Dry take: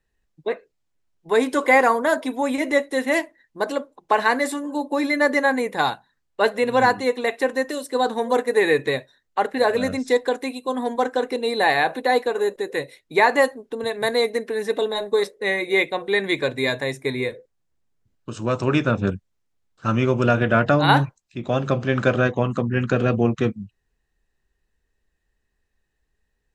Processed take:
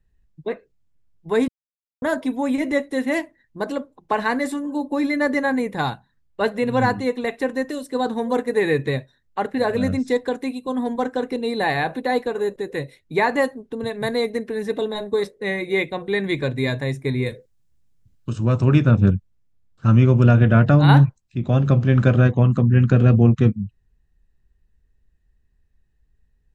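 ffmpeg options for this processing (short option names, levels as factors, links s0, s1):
-filter_complex "[0:a]asettb=1/sr,asplit=3[s0][s1][s2];[s0]atrim=end=17.264[s3];[s1]atrim=start=17.26:end=18.33,asetpts=PTS-STARTPTS,afade=t=in:d=0.004:c=qsin,afade=t=out:st=1.066:d=0.004:c=qsin,highshelf=f=2900:g=11.5[s4];[s2]atrim=start=18.326[s5];[s3][s4]acrossfade=d=0.004:c1=hsin:c2=qsin[s6];[s6][s5]acrossfade=d=0.004:c1=qsin:c2=hsin,asplit=3[s7][s8][s9];[s7]atrim=end=1.48,asetpts=PTS-STARTPTS,afade=t=out:st=1.476:d=0.004:c=hsin[s10];[s8]atrim=start=1.48:end=2.02,asetpts=PTS-STARTPTS,volume=0[s11];[s9]atrim=start=2.02,asetpts=PTS-STARTPTS,afade=t=in:d=0.004:c=hsin[s12];[s10][s11][s12]concat=n=3:v=0:a=1,bass=f=250:g=15,treble=f=4000:g=-2,volume=0.668"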